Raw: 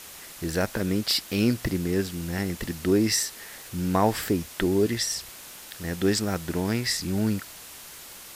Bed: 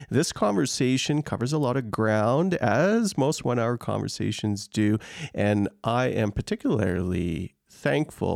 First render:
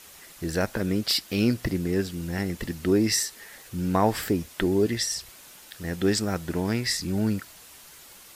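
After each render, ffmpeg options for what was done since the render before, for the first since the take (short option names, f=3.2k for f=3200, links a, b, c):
-af "afftdn=nr=6:nf=-44"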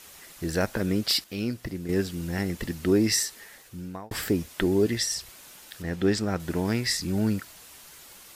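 -filter_complex "[0:a]asettb=1/sr,asplit=3[a][b][c];[a]atrim=end=5.824[d];[b]atrim=start=5.82:end=6.4,asetpts=PTS-STARTPTS,afade=t=in:d=0.004:c=qsin,afade=t=out:st=0.576:d=0.004:c=qsin,lowpass=f=3.7k:p=1[e];[c]atrim=start=6.396[f];[d][e]acrossfade=d=0.004:c1=hsin:c2=qsin[g];[g][f]acrossfade=d=0.004:c1=qsin:c2=hsin,asplit=4[h][i][j][k];[h]atrim=end=1.242[l];[i]atrim=start=1.238:end=1.892,asetpts=PTS-STARTPTS,volume=-7dB[m];[j]atrim=start=1.888:end=4.11,asetpts=PTS-STARTPTS,afade=t=out:st=1.402:d=0.82[n];[k]atrim=start=4.11,asetpts=PTS-STARTPTS,afade=t=in:d=0.004:c=hsin[o];[l][m]acrossfade=d=0.004:c1=hsin:c2=hsin[p];[n][o]concat=n=2:v=0:a=1[q];[p][q]acrossfade=d=0.004:c1=hsin:c2=hsin"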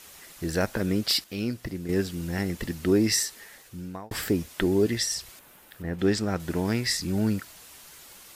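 -filter_complex "[0:a]asettb=1/sr,asplit=3[a][b][c];[a]atrim=end=5.394[d];[b]atrim=start=5.39:end=5.99,asetpts=PTS-STARTPTS,afade=t=in:d=0.004:c=qsin,afade=t=out:st=0.596:d=0.004:c=qsin,equalizer=f=5.7k:w=0.61:g=-12.5[e];[c]atrim=start=5.986[f];[d][e]acrossfade=d=0.004:c1=hsin:c2=qsin[g];[g][f]acrossfade=d=0.004:c1=qsin:c2=hsin"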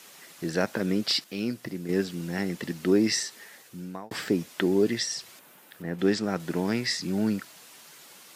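-filter_complex "[0:a]acrossover=split=7000[a][b];[b]acompressor=threshold=-51dB:ratio=4:attack=1:release=60[c];[a][c]amix=inputs=2:normalize=0,highpass=f=140:w=0.5412,highpass=f=140:w=1.3066"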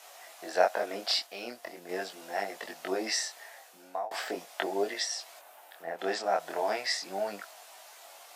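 -af "flanger=delay=19.5:depth=6.1:speed=0.4,highpass=f=690:t=q:w=5.3"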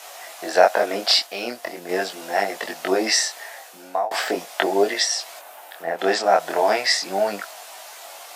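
-af "volume=11.5dB,alimiter=limit=-1dB:level=0:latency=1"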